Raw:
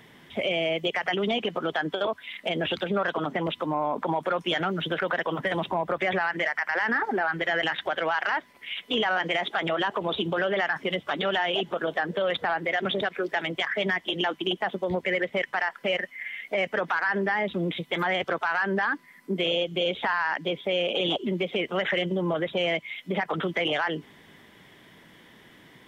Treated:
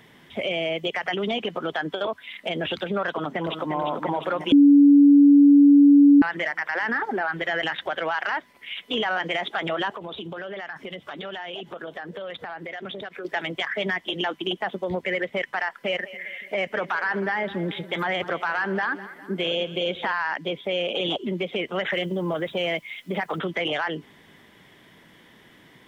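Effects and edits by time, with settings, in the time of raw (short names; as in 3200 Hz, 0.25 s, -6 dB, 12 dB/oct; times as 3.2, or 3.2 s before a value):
3.09–3.74 echo throw 0.35 s, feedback 75%, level -6.5 dB
4.52–6.22 bleep 285 Hz -9.5 dBFS
9.93–13.25 compressor 3:1, threshold -34 dBFS
15.81–20.12 split-band echo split 430 Hz, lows 0.284 s, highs 0.204 s, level -15.5 dB
21.92–23.39 requantised 10-bit, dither none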